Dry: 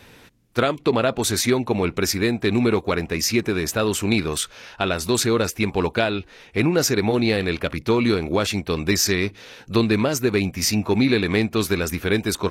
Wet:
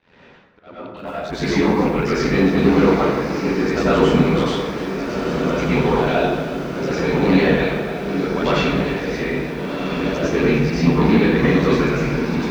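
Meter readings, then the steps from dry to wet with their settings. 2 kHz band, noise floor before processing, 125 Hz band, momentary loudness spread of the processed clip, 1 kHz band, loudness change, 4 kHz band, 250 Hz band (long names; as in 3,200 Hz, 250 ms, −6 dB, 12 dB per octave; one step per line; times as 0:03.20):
+2.0 dB, −49 dBFS, +4.0 dB, 9 LU, +5.0 dB, +3.0 dB, −4.0 dB, +4.0 dB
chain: high-pass filter 140 Hz 6 dB per octave
reverb reduction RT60 1.9 s
dynamic equaliser 500 Hz, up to −6 dB, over −39 dBFS, Q 6.4
brickwall limiter −12 dBFS, peak gain reduction 5.5 dB
leveller curve on the samples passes 2
volume swells 584 ms
Gaussian smoothing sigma 2.2 samples
fake sidechain pumping 102 BPM, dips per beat 1, −21 dB, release 186 ms
ring modulation 42 Hz
on a send: feedback delay with all-pass diffusion 1,443 ms, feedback 53%, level −6 dB
on the sum: dense smooth reverb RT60 1.2 s, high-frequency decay 0.55×, pre-delay 80 ms, DRR −9.5 dB
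feedback echo at a low word length 298 ms, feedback 35%, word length 6 bits, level −13 dB
level −2.5 dB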